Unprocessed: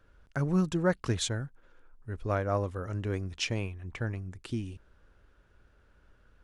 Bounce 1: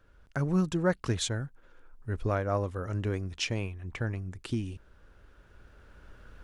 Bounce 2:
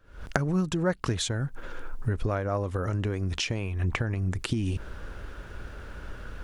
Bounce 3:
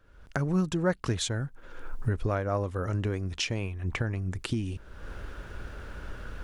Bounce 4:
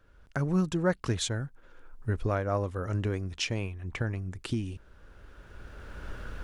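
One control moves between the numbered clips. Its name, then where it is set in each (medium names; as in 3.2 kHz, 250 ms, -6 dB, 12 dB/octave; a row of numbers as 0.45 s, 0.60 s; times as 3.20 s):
recorder AGC, rising by: 5.2 dB/s, 90 dB/s, 36 dB/s, 13 dB/s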